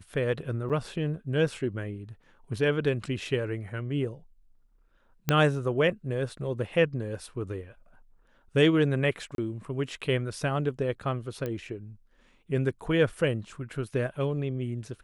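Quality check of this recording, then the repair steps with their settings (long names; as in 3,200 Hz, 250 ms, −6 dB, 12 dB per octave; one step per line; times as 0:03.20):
0:00.69–0:00.70: drop-out 7.5 ms
0:05.29: click −10 dBFS
0:09.35–0:09.38: drop-out 32 ms
0:11.46: click −20 dBFS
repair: click removal
repair the gap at 0:00.69, 7.5 ms
repair the gap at 0:09.35, 32 ms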